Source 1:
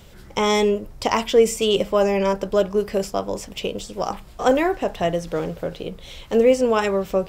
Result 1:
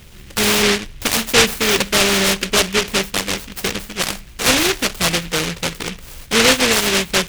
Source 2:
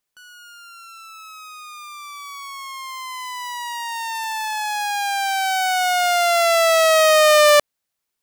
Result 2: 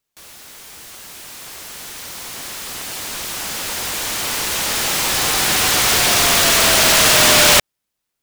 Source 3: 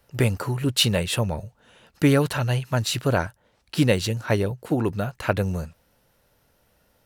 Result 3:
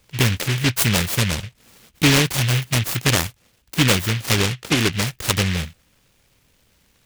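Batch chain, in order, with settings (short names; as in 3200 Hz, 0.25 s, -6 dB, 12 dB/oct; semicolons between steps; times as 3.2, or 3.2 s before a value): bell 5000 Hz -12.5 dB 0.56 oct; in parallel at 0 dB: limiter -14.5 dBFS; on the sum: noise-modulated delay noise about 2400 Hz, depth 0.41 ms; gain -1.5 dB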